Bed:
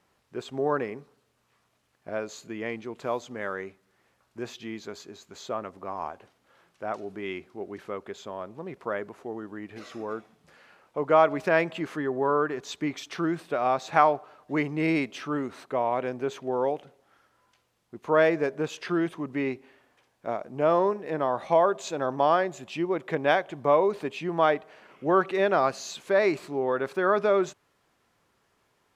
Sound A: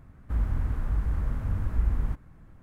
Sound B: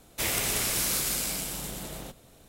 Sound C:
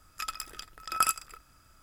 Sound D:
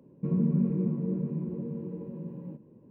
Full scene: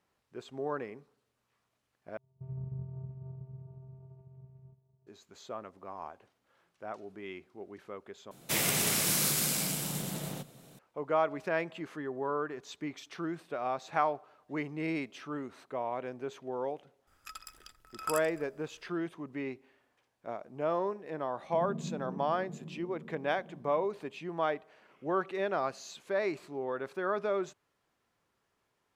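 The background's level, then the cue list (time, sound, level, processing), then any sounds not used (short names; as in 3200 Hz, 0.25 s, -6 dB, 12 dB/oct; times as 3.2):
bed -9 dB
2.17 replace with D -13.5 dB + vocoder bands 4, square 131 Hz
8.31 replace with B -1 dB + resonant low shelf 100 Hz -13 dB, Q 3
17.07 add C -10.5 dB
21.3 add D -13.5 dB
not used: A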